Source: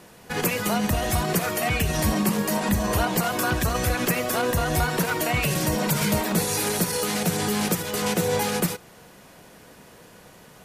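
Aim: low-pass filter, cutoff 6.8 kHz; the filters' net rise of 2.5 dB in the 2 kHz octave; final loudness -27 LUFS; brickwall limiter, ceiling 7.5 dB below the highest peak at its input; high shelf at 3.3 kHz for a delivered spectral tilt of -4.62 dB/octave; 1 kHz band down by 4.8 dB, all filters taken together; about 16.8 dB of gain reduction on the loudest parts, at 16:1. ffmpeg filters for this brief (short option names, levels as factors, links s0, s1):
-af "lowpass=6800,equalizer=f=1000:t=o:g=-8.5,equalizer=f=2000:t=o:g=7.5,highshelf=f=3300:g=-4.5,acompressor=threshold=0.0158:ratio=16,volume=5.96,alimiter=limit=0.126:level=0:latency=1"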